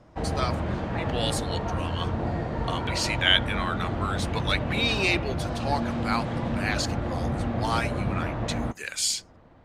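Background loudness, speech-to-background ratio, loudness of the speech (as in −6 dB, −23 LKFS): −30.0 LKFS, 1.0 dB, −29.0 LKFS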